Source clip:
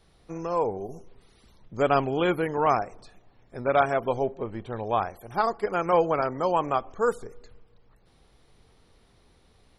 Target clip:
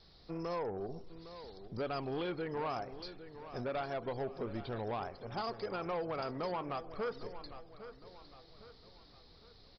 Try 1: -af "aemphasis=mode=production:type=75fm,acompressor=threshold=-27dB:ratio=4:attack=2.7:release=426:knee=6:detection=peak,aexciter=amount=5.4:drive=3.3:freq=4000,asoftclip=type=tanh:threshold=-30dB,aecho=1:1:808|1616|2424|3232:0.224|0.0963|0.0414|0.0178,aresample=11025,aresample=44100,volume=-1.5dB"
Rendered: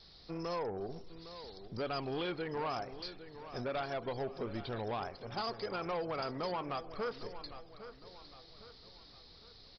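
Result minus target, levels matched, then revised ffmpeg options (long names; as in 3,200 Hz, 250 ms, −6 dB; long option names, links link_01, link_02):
4,000 Hz band +4.5 dB
-af "aemphasis=mode=production:type=75fm,acompressor=threshold=-27dB:ratio=4:attack=2.7:release=426:knee=6:detection=peak,highshelf=frequency=2300:gain=-7.5,aexciter=amount=5.4:drive=3.3:freq=4000,asoftclip=type=tanh:threshold=-30dB,aecho=1:1:808|1616|2424|3232:0.224|0.0963|0.0414|0.0178,aresample=11025,aresample=44100,volume=-1.5dB"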